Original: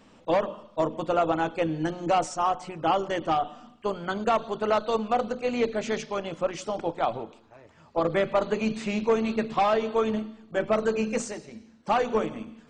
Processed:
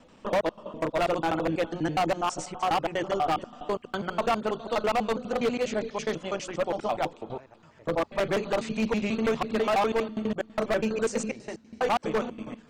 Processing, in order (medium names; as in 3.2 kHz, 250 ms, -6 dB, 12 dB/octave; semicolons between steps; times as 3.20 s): slices played last to first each 82 ms, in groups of 3; wavefolder -19 dBFS